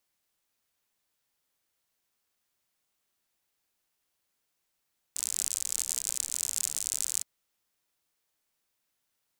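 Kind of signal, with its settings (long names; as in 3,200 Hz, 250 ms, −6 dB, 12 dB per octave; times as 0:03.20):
rain-like ticks over hiss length 2.07 s, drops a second 69, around 7,600 Hz, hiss −27.5 dB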